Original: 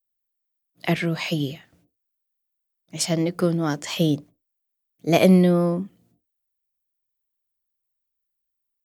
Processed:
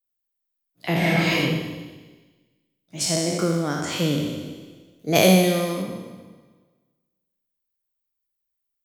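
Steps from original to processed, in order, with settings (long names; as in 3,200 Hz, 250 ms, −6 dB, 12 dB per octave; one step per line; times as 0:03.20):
peak hold with a decay on every bin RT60 1.37 s
0:05.15–0:05.82: high-shelf EQ 3,200 Hz +11 dB
four-comb reverb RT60 1.2 s, combs from 32 ms, DRR 8 dB
0:00.98–0:01.38: thrown reverb, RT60 1.1 s, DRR −5 dB
level −4 dB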